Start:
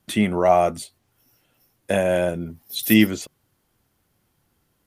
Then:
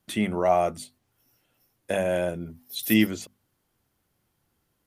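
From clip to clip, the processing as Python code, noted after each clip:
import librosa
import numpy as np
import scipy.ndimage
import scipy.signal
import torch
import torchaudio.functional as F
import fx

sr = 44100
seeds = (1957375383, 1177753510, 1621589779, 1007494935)

y = fx.hum_notches(x, sr, base_hz=50, count=5)
y = y * 10.0 ** (-5.0 / 20.0)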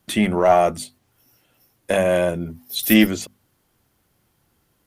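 y = fx.diode_clip(x, sr, knee_db=-13.0)
y = y * 10.0 ** (8.0 / 20.0)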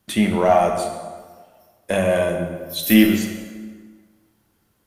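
y = fx.rev_plate(x, sr, seeds[0], rt60_s=1.6, hf_ratio=0.7, predelay_ms=0, drr_db=3.0)
y = y * 10.0 ** (-2.0 / 20.0)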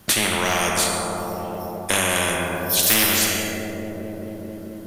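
y = fx.echo_wet_lowpass(x, sr, ms=219, feedback_pct=70, hz=630.0, wet_db=-12)
y = fx.spectral_comp(y, sr, ratio=4.0)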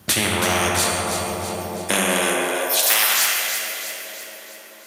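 y = fx.filter_sweep_highpass(x, sr, from_hz=67.0, to_hz=1000.0, start_s=1.35, end_s=3.08, q=1.4)
y = fx.echo_split(y, sr, split_hz=1500.0, low_ms=87, high_ms=327, feedback_pct=52, wet_db=-7.0)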